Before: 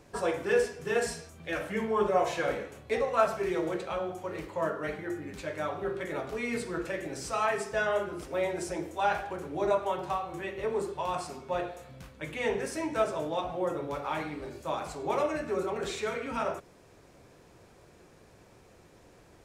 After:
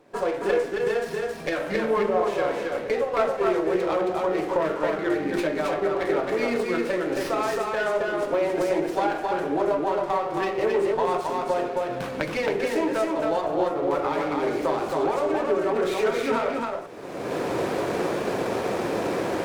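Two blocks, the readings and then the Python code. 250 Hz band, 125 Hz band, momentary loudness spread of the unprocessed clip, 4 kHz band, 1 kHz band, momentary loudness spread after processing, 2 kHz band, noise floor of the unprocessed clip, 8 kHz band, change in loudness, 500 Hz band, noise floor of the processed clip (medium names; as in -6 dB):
+9.5 dB, +4.5 dB, 9 LU, +6.0 dB, +6.0 dB, 4 LU, +5.5 dB, -57 dBFS, +1.0 dB, +6.5 dB, +8.0 dB, -33 dBFS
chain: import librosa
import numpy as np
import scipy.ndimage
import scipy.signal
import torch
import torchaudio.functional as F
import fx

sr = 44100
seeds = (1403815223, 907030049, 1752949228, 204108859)

p1 = fx.recorder_agc(x, sr, target_db=-17.0, rise_db_per_s=32.0, max_gain_db=30)
p2 = scipy.signal.sosfilt(scipy.signal.butter(2, 310.0, 'highpass', fs=sr, output='sos'), p1)
p3 = fx.tilt_eq(p2, sr, slope=-2.0)
p4 = p3 + fx.echo_single(p3, sr, ms=270, db=-3.0, dry=0)
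y = fx.running_max(p4, sr, window=5)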